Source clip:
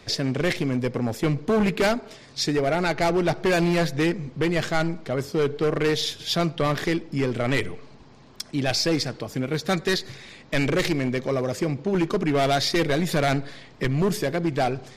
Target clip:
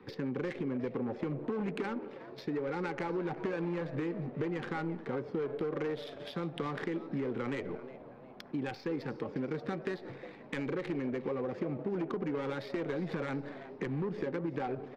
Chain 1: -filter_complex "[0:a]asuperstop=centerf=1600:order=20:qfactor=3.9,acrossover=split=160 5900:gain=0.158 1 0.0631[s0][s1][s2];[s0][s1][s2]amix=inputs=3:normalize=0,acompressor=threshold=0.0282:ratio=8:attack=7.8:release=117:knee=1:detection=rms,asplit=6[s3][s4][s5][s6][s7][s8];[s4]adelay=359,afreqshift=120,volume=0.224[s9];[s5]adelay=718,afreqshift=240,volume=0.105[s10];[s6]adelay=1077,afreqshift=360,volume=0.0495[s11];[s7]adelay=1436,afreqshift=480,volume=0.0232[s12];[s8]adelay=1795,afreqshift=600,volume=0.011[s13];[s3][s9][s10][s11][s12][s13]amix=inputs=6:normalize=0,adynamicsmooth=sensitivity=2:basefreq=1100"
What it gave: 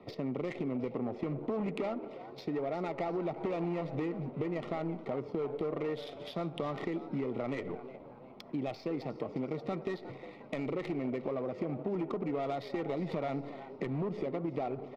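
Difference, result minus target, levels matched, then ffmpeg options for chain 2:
2 kHz band -4.5 dB
-filter_complex "[0:a]asuperstop=centerf=650:order=20:qfactor=3.9,acrossover=split=160 5900:gain=0.158 1 0.0631[s0][s1][s2];[s0][s1][s2]amix=inputs=3:normalize=0,acompressor=threshold=0.0282:ratio=8:attack=7.8:release=117:knee=1:detection=rms,asplit=6[s3][s4][s5][s6][s7][s8];[s4]adelay=359,afreqshift=120,volume=0.224[s9];[s5]adelay=718,afreqshift=240,volume=0.105[s10];[s6]adelay=1077,afreqshift=360,volume=0.0495[s11];[s7]adelay=1436,afreqshift=480,volume=0.0232[s12];[s8]adelay=1795,afreqshift=600,volume=0.011[s13];[s3][s9][s10][s11][s12][s13]amix=inputs=6:normalize=0,adynamicsmooth=sensitivity=2:basefreq=1100"

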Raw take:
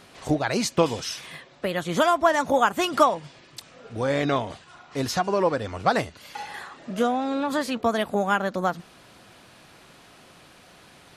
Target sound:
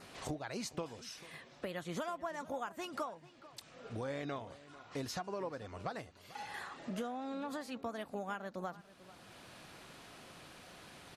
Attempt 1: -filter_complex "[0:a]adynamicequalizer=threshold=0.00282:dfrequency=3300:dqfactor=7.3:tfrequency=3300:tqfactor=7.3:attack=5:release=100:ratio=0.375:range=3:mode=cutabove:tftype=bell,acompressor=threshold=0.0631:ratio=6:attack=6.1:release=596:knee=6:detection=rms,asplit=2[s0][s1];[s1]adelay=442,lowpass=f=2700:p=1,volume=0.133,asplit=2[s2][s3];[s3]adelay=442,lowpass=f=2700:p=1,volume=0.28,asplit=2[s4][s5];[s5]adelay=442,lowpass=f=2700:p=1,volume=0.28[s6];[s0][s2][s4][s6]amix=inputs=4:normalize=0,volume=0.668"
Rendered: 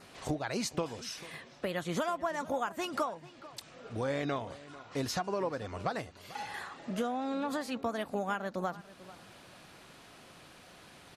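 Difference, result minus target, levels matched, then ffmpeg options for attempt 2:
compression: peak gain reduction -7 dB
-filter_complex "[0:a]adynamicequalizer=threshold=0.00282:dfrequency=3300:dqfactor=7.3:tfrequency=3300:tqfactor=7.3:attack=5:release=100:ratio=0.375:range=3:mode=cutabove:tftype=bell,acompressor=threshold=0.0237:ratio=6:attack=6.1:release=596:knee=6:detection=rms,asplit=2[s0][s1];[s1]adelay=442,lowpass=f=2700:p=1,volume=0.133,asplit=2[s2][s3];[s3]adelay=442,lowpass=f=2700:p=1,volume=0.28,asplit=2[s4][s5];[s5]adelay=442,lowpass=f=2700:p=1,volume=0.28[s6];[s0][s2][s4][s6]amix=inputs=4:normalize=0,volume=0.668"

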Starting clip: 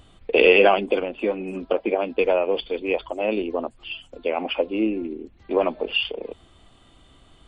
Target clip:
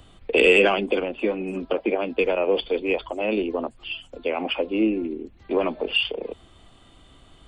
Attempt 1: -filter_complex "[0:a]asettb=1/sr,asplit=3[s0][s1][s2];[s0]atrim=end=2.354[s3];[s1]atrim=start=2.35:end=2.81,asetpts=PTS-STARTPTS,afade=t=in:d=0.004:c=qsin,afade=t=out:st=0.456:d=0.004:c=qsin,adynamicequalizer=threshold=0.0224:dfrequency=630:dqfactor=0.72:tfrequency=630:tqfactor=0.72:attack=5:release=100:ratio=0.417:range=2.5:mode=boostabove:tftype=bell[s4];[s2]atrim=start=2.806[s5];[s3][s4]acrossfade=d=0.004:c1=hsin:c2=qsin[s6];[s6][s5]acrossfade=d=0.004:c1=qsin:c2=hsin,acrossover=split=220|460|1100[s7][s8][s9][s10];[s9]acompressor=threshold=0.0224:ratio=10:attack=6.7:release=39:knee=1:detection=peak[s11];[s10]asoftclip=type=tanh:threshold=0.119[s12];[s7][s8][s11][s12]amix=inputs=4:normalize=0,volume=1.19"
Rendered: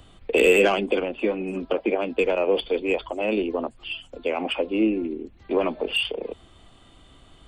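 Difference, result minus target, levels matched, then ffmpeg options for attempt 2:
saturation: distortion +11 dB
-filter_complex "[0:a]asettb=1/sr,asplit=3[s0][s1][s2];[s0]atrim=end=2.354[s3];[s1]atrim=start=2.35:end=2.81,asetpts=PTS-STARTPTS,afade=t=in:d=0.004:c=qsin,afade=t=out:st=0.456:d=0.004:c=qsin,adynamicequalizer=threshold=0.0224:dfrequency=630:dqfactor=0.72:tfrequency=630:tqfactor=0.72:attack=5:release=100:ratio=0.417:range=2.5:mode=boostabove:tftype=bell[s4];[s2]atrim=start=2.806[s5];[s3][s4]acrossfade=d=0.004:c1=hsin:c2=qsin[s6];[s6][s5]acrossfade=d=0.004:c1=qsin:c2=hsin,acrossover=split=220|460|1100[s7][s8][s9][s10];[s9]acompressor=threshold=0.0224:ratio=10:attack=6.7:release=39:knee=1:detection=peak[s11];[s10]asoftclip=type=tanh:threshold=0.355[s12];[s7][s8][s11][s12]amix=inputs=4:normalize=0,volume=1.19"

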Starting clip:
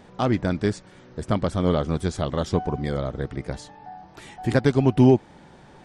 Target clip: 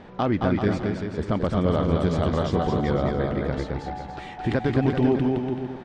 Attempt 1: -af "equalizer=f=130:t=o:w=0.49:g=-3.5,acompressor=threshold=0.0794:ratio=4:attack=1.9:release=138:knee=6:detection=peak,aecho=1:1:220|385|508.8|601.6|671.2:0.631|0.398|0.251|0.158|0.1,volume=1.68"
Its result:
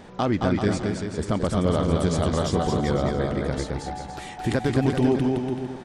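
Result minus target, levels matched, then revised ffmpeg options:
4 kHz band +3.5 dB
-af "lowpass=3400,equalizer=f=130:t=o:w=0.49:g=-3.5,acompressor=threshold=0.0794:ratio=4:attack=1.9:release=138:knee=6:detection=peak,aecho=1:1:220|385|508.8|601.6|671.2:0.631|0.398|0.251|0.158|0.1,volume=1.68"

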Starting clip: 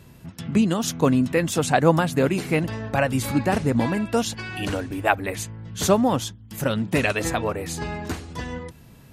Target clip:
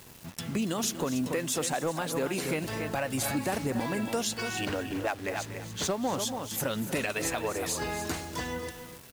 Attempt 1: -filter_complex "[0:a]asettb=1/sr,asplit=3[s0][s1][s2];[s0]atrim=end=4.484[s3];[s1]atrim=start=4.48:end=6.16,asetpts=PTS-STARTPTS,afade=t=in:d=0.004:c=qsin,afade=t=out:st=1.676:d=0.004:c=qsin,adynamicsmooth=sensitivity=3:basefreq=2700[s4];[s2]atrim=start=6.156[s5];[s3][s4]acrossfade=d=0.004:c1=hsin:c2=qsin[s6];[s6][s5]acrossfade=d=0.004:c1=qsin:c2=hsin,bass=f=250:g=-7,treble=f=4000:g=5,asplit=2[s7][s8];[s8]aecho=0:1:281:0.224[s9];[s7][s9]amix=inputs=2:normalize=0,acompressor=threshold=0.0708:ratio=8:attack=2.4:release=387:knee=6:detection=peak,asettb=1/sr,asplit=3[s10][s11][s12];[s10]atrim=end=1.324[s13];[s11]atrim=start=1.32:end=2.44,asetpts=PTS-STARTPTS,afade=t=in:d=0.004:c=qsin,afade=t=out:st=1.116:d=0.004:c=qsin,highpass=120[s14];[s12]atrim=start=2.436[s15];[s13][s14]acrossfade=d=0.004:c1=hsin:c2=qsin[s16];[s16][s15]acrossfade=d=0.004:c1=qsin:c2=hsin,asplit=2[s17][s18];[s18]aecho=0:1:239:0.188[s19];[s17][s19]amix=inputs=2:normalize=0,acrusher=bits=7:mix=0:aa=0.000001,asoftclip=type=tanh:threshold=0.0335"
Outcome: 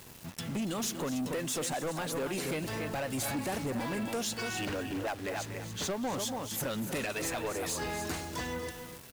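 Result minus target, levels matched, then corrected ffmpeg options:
saturation: distortion +13 dB
-filter_complex "[0:a]asettb=1/sr,asplit=3[s0][s1][s2];[s0]atrim=end=4.484[s3];[s1]atrim=start=4.48:end=6.16,asetpts=PTS-STARTPTS,afade=t=in:d=0.004:c=qsin,afade=t=out:st=1.676:d=0.004:c=qsin,adynamicsmooth=sensitivity=3:basefreq=2700[s4];[s2]atrim=start=6.156[s5];[s3][s4]acrossfade=d=0.004:c1=hsin:c2=qsin[s6];[s6][s5]acrossfade=d=0.004:c1=qsin:c2=hsin,bass=f=250:g=-7,treble=f=4000:g=5,asplit=2[s7][s8];[s8]aecho=0:1:281:0.224[s9];[s7][s9]amix=inputs=2:normalize=0,acompressor=threshold=0.0708:ratio=8:attack=2.4:release=387:knee=6:detection=peak,asettb=1/sr,asplit=3[s10][s11][s12];[s10]atrim=end=1.324[s13];[s11]atrim=start=1.32:end=2.44,asetpts=PTS-STARTPTS,afade=t=in:d=0.004:c=qsin,afade=t=out:st=1.116:d=0.004:c=qsin,highpass=120[s14];[s12]atrim=start=2.436[s15];[s13][s14]acrossfade=d=0.004:c1=hsin:c2=qsin[s16];[s16][s15]acrossfade=d=0.004:c1=qsin:c2=hsin,asplit=2[s17][s18];[s18]aecho=0:1:239:0.188[s19];[s17][s19]amix=inputs=2:normalize=0,acrusher=bits=7:mix=0:aa=0.000001,asoftclip=type=tanh:threshold=0.119"

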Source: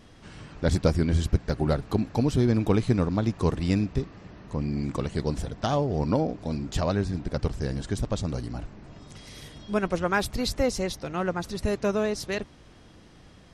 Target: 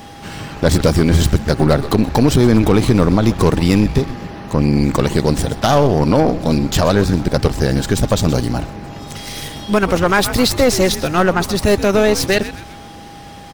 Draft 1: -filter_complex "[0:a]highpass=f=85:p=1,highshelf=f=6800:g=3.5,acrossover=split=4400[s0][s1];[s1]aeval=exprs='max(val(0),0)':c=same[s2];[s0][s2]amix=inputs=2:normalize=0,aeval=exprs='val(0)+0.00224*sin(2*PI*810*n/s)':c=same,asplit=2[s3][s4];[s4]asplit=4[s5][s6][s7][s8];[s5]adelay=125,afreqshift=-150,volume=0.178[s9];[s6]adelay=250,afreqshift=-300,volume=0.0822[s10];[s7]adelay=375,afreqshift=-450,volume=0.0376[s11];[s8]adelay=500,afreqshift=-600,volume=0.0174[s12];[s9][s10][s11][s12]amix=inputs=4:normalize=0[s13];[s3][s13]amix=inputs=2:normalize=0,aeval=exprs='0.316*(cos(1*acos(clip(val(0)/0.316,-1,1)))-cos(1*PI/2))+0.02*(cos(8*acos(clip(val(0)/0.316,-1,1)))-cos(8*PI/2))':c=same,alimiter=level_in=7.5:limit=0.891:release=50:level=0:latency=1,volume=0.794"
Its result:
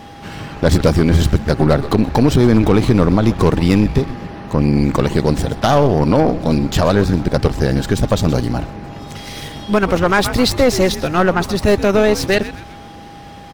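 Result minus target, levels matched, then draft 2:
8 kHz band -4.5 dB
-filter_complex "[0:a]highpass=f=85:p=1,highshelf=f=6800:g=14.5,acrossover=split=4400[s0][s1];[s1]aeval=exprs='max(val(0),0)':c=same[s2];[s0][s2]amix=inputs=2:normalize=0,aeval=exprs='val(0)+0.00224*sin(2*PI*810*n/s)':c=same,asplit=2[s3][s4];[s4]asplit=4[s5][s6][s7][s8];[s5]adelay=125,afreqshift=-150,volume=0.178[s9];[s6]adelay=250,afreqshift=-300,volume=0.0822[s10];[s7]adelay=375,afreqshift=-450,volume=0.0376[s11];[s8]adelay=500,afreqshift=-600,volume=0.0174[s12];[s9][s10][s11][s12]amix=inputs=4:normalize=0[s13];[s3][s13]amix=inputs=2:normalize=0,aeval=exprs='0.316*(cos(1*acos(clip(val(0)/0.316,-1,1)))-cos(1*PI/2))+0.02*(cos(8*acos(clip(val(0)/0.316,-1,1)))-cos(8*PI/2))':c=same,alimiter=level_in=7.5:limit=0.891:release=50:level=0:latency=1,volume=0.794"

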